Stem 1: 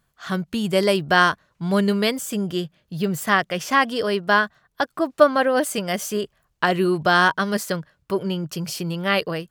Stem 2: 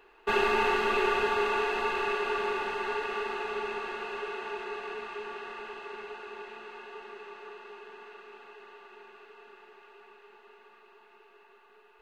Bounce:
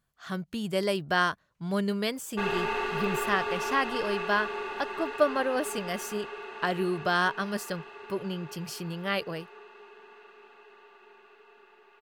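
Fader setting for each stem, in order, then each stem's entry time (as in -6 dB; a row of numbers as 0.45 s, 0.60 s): -9.0 dB, -4.0 dB; 0.00 s, 2.10 s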